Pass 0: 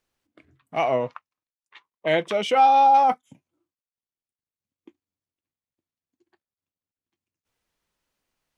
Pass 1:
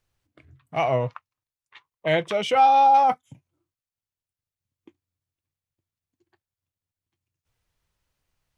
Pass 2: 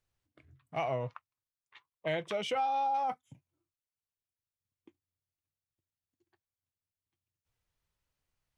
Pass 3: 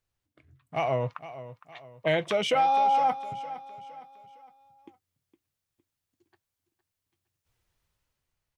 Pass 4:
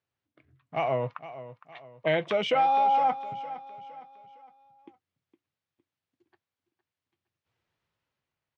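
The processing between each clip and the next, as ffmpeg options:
ffmpeg -i in.wav -af "lowshelf=frequency=160:width_type=q:width=1.5:gain=9.5" out.wav
ffmpeg -i in.wav -af "acompressor=threshold=-21dB:ratio=6,volume=-8dB" out.wav
ffmpeg -i in.wav -af "dynaudnorm=framelen=140:gausssize=11:maxgain=8dB,aecho=1:1:461|922|1383|1844:0.188|0.0772|0.0317|0.013" out.wav
ffmpeg -i in.wav -af "highpass=130,lowpass=3600" out.wav

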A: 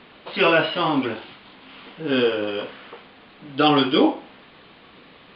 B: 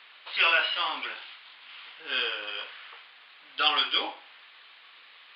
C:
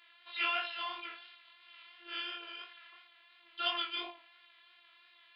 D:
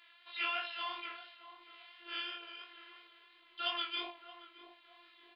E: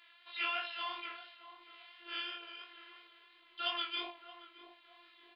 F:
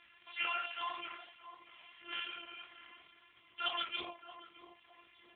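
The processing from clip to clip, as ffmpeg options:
ffmpeg -i in.wav -af "highpass=1500" out.wav
ffmpeg -i in.wav -af "afftfilt=real='hypot(re,im)*cos(PI*b)':imag='0':win_size=512:overlap=0.75,flanger=delay=20:depth=4.4:speed=2.9,volume=-3.5dB" out.wav
ffmpeg -i in.wav -filter_complex "[0:a]tremolo=f=0.98:d=0.3,asplit=2[link_01][link_02];[link_02]adelay=623,lowpass=frequency=830:poles=1,volume=-10dB,asplit=2[link_03][link_04];[link_04]adelay=623,lowpass=frequency=830:poles=1,volume=0.47,asplit=2[link_05][link_06];[link_06]adelay=623,lowpass=frequency=830:poles=1,volume=0.47,asplit=2[link_07][link_08];[link_08]adelay=623,lowpass=frequency=830:poles=1,volume=0.47,asplit=2[link_09][link_10];[link_10]adelay=623,lowpass=frequency=830:poles=1,volume=0.47[link_11];[link_01][link_03][link_05][link_07][link_09][link_11]amix=inputs=6:normalize=0" out.wav
ffmpeg -i in.wav -af anull out.wav
ffmpeg -i in.wav -af "aeval=exprs='val(0)+0.000251*(sin(2*PI*60*n/s)+sin(2*PI*2*60*n/s)/2+sin(2*PI*3*60*n/s)/3+sin(2*PI*4*60*n/s)/4+sin(2*PI*5*60*n/s)/5)':channel_layout=same,volume=2.5dB" -ar 8000 -c:a libopencore_amrnb -b:a 4750 out.amr

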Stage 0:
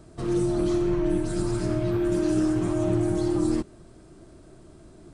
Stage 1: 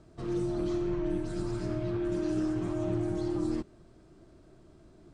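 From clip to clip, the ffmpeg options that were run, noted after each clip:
ffmpeg -i in.wav -af "lowpass=6200,volume=-7dB" out.wav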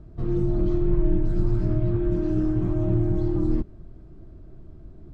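ffmpeg -i in.wav -af "aemphasis=mode=reproduction:type=riaa" out.wav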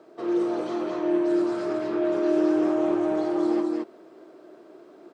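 ffmpeg -i in.wav -af "highpass=frequency=390:width=0.5412,highpass=frequency=390:width=1.3066,aecho=1:1:43.73|215.7:0.316|0.794,volume=9dB" out.wav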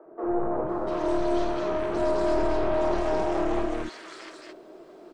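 ffmpeg -i in.wav -filter_complex "[0:a]aeval=exprs='(tanh(11.2*val(0)+0.65)-tanh(0.65))/11.2':channel_layout=same,acrossover=split=290|1500[link_01][link_02][link_03];[link_01]adelay=50[link_04];[link_03]adelay=690[link_05];[link_04][link_02][link_05]amix=inputs=3:normalize=0,volume=7dB" out.wav

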